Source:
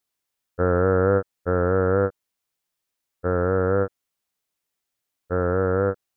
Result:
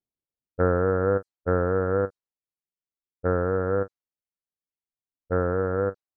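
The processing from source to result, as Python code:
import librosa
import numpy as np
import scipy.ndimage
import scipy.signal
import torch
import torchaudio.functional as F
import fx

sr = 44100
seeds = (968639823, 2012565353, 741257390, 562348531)

y = fx.dereverb_blind(x, sr, rt60_s=1.2)
y = fx.env_lowpass(y, sr, base_hz=390.0, full_db=-20.5)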